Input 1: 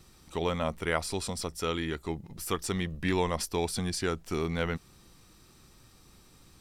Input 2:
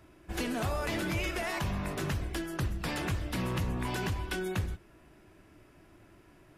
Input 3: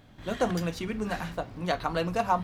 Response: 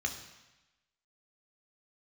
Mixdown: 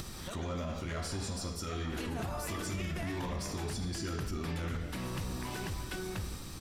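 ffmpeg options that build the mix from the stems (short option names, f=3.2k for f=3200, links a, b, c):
-filter_complex "[0:a]asoftclip=type=tanh:threshold=-25dB,volume=2.5dB,asplit=2[a][b];[b]volume=-7dB[c];[1:a]adelay=1600,volume=-6dB[d];[2:a]highpass=f=1.3k:p=1,volume=-8dB,asplit=2[e][f];[f]volume=-5dB[g];[a][e]amix=inputs=2:normalize=0,acompressor=mode=upward:threshold=-32dB:ratio=2.5,alimiter=level_in=4dB:limit=-24dB:level=0:latency=1:release=256,volume=-4dB,volume=0dB[h];[3:a]atrim=start_sample=2205[i];[c][g]amix=inputs=2:normalize=0[j];[j][i]afir=irnorm=-1:irlink=0[k];[d][h][k]amix=inputs=3:normalize=0,alimiter=level_in=4.5dB:limit=-24dB:level=0:latency=1:release=28,volume=-4.5dB"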